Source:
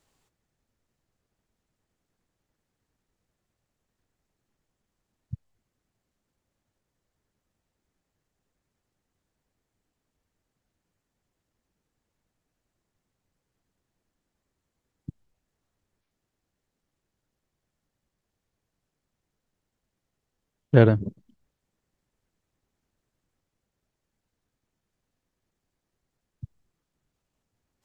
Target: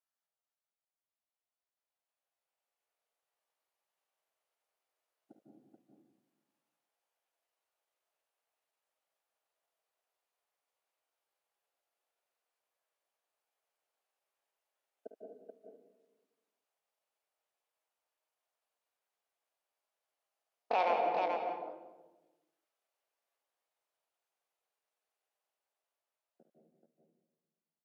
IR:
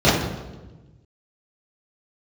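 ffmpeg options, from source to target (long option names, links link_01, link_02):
-filter_complex "[0:a]afwtdn=0.0126,highpass=frequency=370:width=0.5412,highpass=frequency=370:width=1.3066,acompressor=threshold=-32dB:ratio=16,alimiter=level_in=7dB:limit=-24dB:level=0:latency=1:release=34,volume=-7dB,dynaudnorm=framelen=420:gausssize=11:maxgain=15dB,asetrate=70004,aresample=44100,atempo=0.629961,aecho=1:1:52|71|179|432:0.282|0.282|0.15|0.596,asplit=2[link_01][link_02];[1:a]atrim=start_sample=2205,adelay=147[link_03];[link_02][link_03]afir=irnorm=-1:irlink=0,volume=-28dB[link_04];[link_01][link_04]amix=inputs=2:normalize=0,volume=-6dB"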